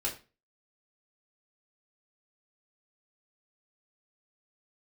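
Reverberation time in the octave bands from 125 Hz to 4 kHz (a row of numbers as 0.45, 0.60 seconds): 0.40, 0.35, 0.35, 0.30, 0.30, 0.30 seconds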